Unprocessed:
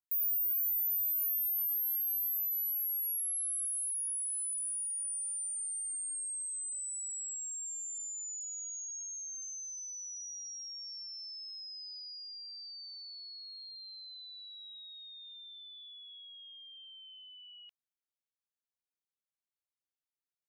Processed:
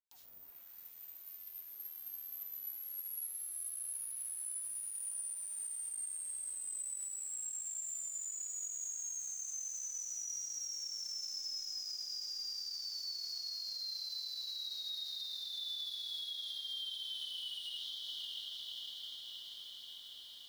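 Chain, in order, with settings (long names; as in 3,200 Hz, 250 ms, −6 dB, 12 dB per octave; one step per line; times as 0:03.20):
low-pass filter 6,700 Hz 24 dB per octave
feedback delay with all-pass diffusion 661 ms, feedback 69%, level −9.5 dB
in parallel at +1 dB: compressor whose output falls as the input rises −53 dBFS, ratio −0.5
on the sum: soft clipping −38.5 dBFS, distortion −22 dB
flanger 1.1 Hz, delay 3.7 ms, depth 5.2 ms, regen −50%
Butterworth high-pass 3,000 Hz 48 dB per octave
comb and all-pass reverb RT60 0.77 s, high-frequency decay 0.45×, pre-delay 35 ms, DRR −5 dB
log-companded quantiser 6 bits
brickwall limiter −41 dBFS, peak gain reduction 8 dB
level +6.5 dB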